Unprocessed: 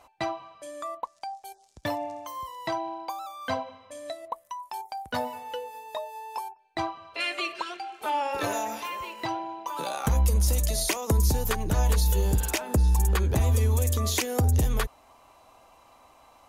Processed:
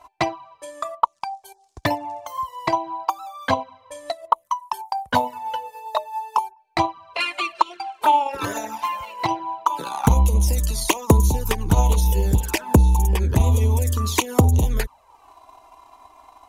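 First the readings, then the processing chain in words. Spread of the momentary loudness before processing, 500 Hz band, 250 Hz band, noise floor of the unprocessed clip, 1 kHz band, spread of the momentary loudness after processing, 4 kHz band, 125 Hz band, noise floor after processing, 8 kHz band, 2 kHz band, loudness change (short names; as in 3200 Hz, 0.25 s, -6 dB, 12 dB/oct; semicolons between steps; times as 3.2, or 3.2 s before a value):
14 LU, +5.0 dB, +8.0 dB, -59 dBFS, +9.5 dB, 12 LU, +4.0 dB, +5.5 dB, -58 dBFS, +2.5 dB, +5.0 dB, +6.0 dB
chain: bell 940 Hz +10.5 dB 0.36 oct; transient shaper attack +8 dB, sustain -5 dB; envelope flanger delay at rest 3.1 ms, full sweep at -17.5 dBFS; gain +4.5 dB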